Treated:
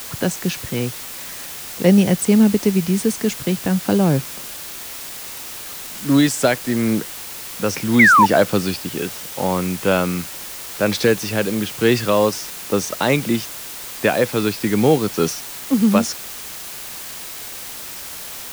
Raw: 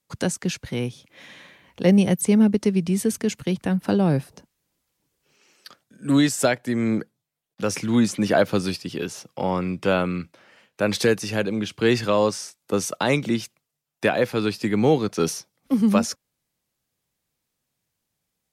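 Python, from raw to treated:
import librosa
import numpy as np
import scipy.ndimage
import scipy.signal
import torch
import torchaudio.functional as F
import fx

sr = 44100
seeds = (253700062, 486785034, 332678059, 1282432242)

y = fx.spec_paint(x, sr, seeds[0], shape='fall', start_s=7.99, length_s=0.27, low_hz=840.0, high_hz=2300.0, level_db=-14.0)
y = fx.env_lowpass(y, sr, base_hz=1900.0, full_db=-16.0)
y = fx.quant_dither(y, sr, seeds[1], bits=6, dither='triangular')
y = F.gain(torch.from_numpy(y), 3.5).numpy()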